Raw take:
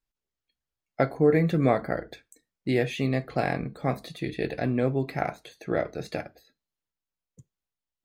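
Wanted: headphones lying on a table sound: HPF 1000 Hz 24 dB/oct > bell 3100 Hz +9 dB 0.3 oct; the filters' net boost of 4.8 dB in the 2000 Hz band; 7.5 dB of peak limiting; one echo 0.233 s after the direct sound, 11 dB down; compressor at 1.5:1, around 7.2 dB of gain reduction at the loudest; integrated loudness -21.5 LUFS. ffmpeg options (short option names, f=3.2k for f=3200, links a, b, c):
-af "equalizer=f=2k:t=o:g=5,acompressor=threshold=-36dB:ratio=1.5,alimiter=limit=-22dB:level=0:latency=1,highpass=f=1k:w=0.5412,highpass=f=1k:w=1.3066,equalizer=f=3.1k:t=o:w=0.3:g=9,aecho=1:1:233:0.282,volume=19.5dB"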